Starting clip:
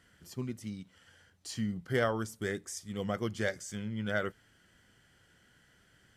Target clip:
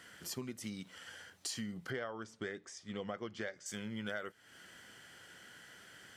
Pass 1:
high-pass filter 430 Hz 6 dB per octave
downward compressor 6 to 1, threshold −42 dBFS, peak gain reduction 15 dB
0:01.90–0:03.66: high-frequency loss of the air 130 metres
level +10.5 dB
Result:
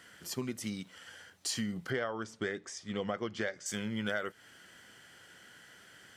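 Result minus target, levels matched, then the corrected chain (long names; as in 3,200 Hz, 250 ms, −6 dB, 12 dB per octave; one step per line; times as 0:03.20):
downward compressor: peak gain reduction −6 dB
high-pass filter 430 Hz 6 dB per octave
downward compressor 6 to 1, threshold −49.5 dBFS, peak gain reduction 21.5 dB
0:01.90–0:03.66: high-frequency loss of the air 130 metres
level +10.5 dB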